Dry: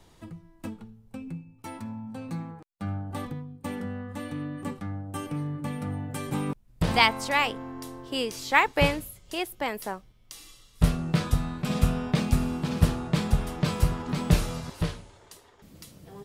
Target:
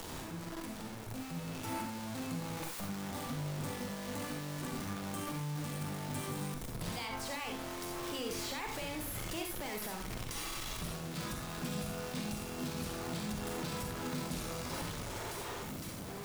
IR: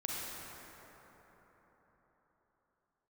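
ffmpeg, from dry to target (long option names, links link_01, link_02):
-filter_complex "[0:a]aeval=exprs='val(0)+0.5*0.0531*sgn(val(0))':channel_layout=same,acrossover=split=110|2500[link_01][link_02][link_03];[link_01]acompressor=threshold=-41dB:ratio=4[link_04];[link_02]acompressor=threshold=-28dB:ratio=4[link_05];[link_03]acompressor=threshold=-38dB:ratio=4[link_06];[link_04][link_05][link_06]amix=inputs=3:normalize=0,acrossover=split=3800[link_07][link_08];[link_07]alimiter=level_in=3.5dB:limit=-24dB:level=0:latency=1,volume=-3.5dB[link_09];[link_09][link_08]amix=inputs=2:normalize=0,dynaudnorm=framelen=240:gausssize=11:maxgain=3.5dB[link_10];[1:a]atrim=start_sample=2205,atrim=end_sample=4410[link_11];[link_10][link_11]afir=irnorm=-1:irlink=0,volume=-7dB"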